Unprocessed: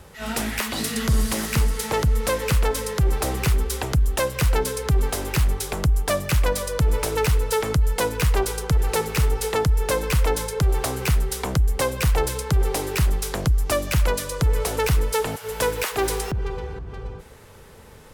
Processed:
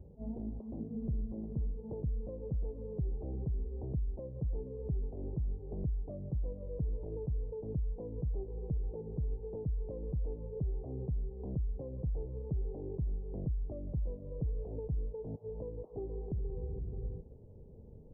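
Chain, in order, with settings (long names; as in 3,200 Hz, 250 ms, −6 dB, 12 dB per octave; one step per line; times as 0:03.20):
downward compressor, threshold −28 dBFS, peak gain reduction 12.5 dB
Gaussian smoothing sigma 18 samples
level −4 dB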